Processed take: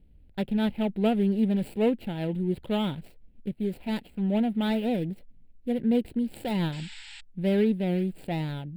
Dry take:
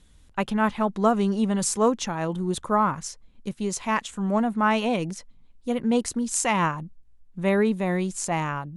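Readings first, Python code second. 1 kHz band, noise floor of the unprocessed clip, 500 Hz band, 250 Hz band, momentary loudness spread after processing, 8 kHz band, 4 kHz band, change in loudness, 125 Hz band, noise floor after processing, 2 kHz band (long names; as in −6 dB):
−13.0 dB, −54 dBFS, −3.5 dB, −0.5 dB, 14 LU, below −20 dB, −3.5 dB, −3.0 dB, 0.0 dB, −55 dBFS, −10.0 dB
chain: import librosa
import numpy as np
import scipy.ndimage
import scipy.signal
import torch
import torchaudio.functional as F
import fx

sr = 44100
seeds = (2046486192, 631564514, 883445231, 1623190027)

y = scipy.ndimage.median_filter(x, 25, mode='constant')
y = fx.spec_paint(y, sr, seeds[0], shape='noise', start_s=6.72, length_s=0.49, low_hz=800.0, high_hz=8200.0, level_db=-41.0)
y = fx.fixed_phaser(y, sr, hz=2700.0, stages=4)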